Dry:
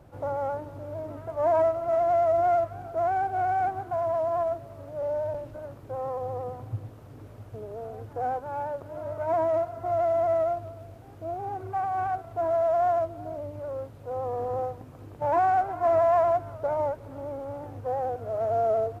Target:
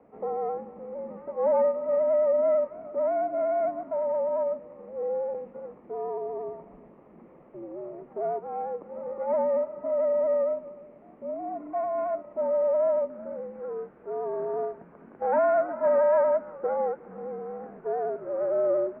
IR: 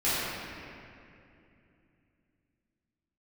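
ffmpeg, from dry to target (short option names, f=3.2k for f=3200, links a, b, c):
-af "asetnsamples=n=441:p=0,asendcmd='13.1 equalizer g 4',equalizer=f=1.6k:t=o:w=0.31:g=-10,highpass=f=260:t=q:w=0.5412,highpass=f=260:t=q:w=1.307,lowpass=f=2.3k:t=q:w=0.5176,lowpass=f=2.3k:t=q:w=0.7071,lowpass=f=2.3k:t=q:w=1.932,afreqshift=-81"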